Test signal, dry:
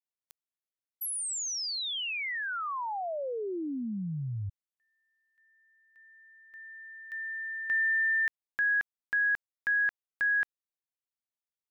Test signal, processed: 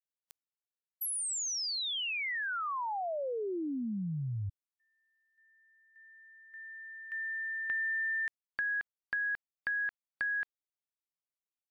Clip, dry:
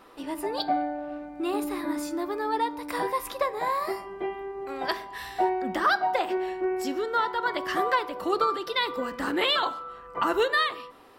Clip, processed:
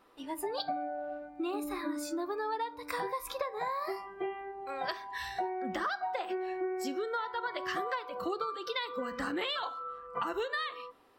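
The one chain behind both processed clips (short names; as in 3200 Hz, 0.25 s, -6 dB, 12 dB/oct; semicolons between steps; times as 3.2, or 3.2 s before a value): spectral noise reduction 11 dB; compressor 6:1, threshold -32 dBFS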